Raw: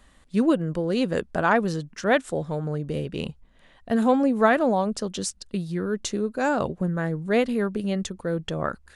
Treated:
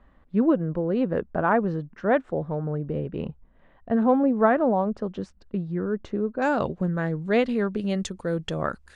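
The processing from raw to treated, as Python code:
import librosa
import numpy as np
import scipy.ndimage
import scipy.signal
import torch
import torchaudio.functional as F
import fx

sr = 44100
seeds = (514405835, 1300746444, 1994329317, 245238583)

y = fx.lowpass(x, sr, hz=fx.steps((0.0, 1400.0), (6.42, 4900.0), (7.9, 9700.0)), slope=12)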